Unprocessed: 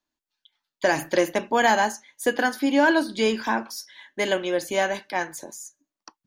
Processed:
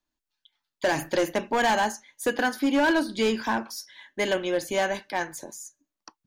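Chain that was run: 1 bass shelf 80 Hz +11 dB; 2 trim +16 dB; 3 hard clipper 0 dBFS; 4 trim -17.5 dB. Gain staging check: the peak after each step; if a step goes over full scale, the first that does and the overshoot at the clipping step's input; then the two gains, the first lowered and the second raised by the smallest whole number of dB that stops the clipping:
-7.5 dBFS, +8.5 dBFS, 0.0 dBFS, -17.5 dBFS; step 2, 8.5 dB; step 2 +7 dB, step 4 -8.5 dB

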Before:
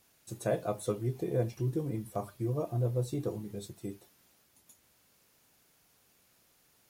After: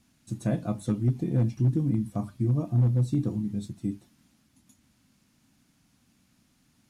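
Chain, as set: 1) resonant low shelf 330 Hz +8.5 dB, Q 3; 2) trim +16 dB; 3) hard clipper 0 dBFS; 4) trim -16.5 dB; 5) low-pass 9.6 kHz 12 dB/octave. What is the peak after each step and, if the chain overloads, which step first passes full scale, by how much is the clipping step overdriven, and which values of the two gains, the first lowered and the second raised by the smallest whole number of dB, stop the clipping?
-13.0 dBFS, +3.0 dBFS, 0.0 dBFS, -16.5 dBFS, -16.5 dBFS; step 2, 3.0 dB; step 2 +13 dB, step 4 -13.5 dB

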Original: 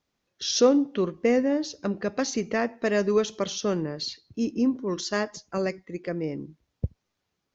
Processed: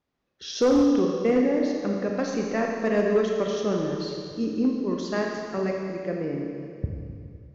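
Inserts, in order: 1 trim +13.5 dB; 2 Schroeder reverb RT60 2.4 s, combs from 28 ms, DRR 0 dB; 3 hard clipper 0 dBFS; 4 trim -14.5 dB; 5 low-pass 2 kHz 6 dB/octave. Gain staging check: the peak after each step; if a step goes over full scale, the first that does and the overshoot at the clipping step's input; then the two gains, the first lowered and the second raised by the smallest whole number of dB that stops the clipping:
+4.0 dBFS, +6.5 dBFS, 0.0 dBFS, -14.5 dBFS, -14.5 dBFS; step 1, 6.5 dB; step 1 +6.5 dB, step 4 -7.5 dB

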